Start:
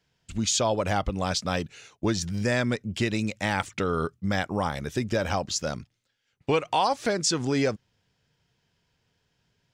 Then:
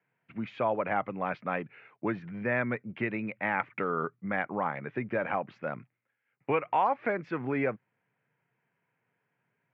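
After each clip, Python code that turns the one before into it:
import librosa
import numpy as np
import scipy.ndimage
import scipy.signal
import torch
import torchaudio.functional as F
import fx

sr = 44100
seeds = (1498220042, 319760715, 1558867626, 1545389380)

y = scipy.signal.sosfilt(scipy.signal.cheby1(4, 1.0, [120.0, 2300.0], 'bandpass', fs=sr, output='sos'), x)
y = fx.low_shelf(y, sr, hz=410.0, db=-8.0)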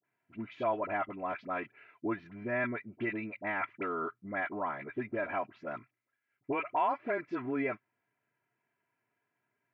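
y = x + 0.65 * np.pad(x, (int(3.0 * sr / 1000.0), 0))[:len(x)]
y = fx.dispersion(y, sr, late='highs', ms=46.0, hz=990.0)
y = F.gain(torch.from_numpy(y), -5.0).numpy()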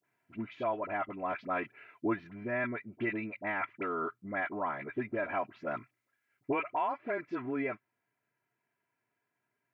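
y = fx.rider(x, sr, range_db=4, speed_s=0.5)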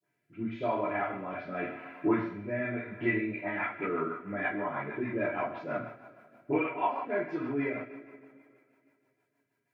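y = fx.rev_double_slope(x, sr, seeds[0], early_s=0.53, late_s=2.6, knee_db=-18, drr_db=-8.5)
y = fx.rotary_switch(y, sr, hz=0.85, then_hz=6.3, switch_at_s=2.88)
y = F.gain(torch.from_numpy(y), -4.5).numpy()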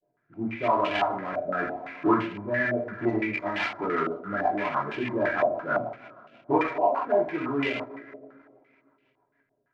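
y = fx.dead_time(x, sr, dead_ms=0.13)
y = fx.filter_held_lowpass(y, sr, hz=5.9, low_hz=620.0, high_hz=2800.0)
y = F.gain(torch.from_numpy(y), 3.0).numpy()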